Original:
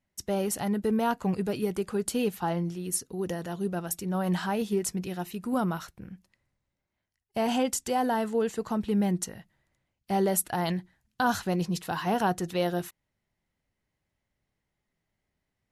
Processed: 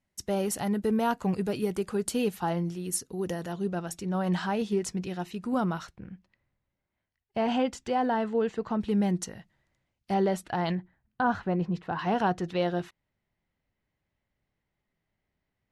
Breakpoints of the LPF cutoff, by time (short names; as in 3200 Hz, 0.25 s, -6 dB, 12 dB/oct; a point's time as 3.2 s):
12000 Hz
from 3.52 s 6700 Hz
from 5.96 s 3400 Hz
from 8.8 s 7700 Hz
from 10.14 s 3900 Hz
from 10.75 s 1800 Hz
from 11.99 s 4000 Hz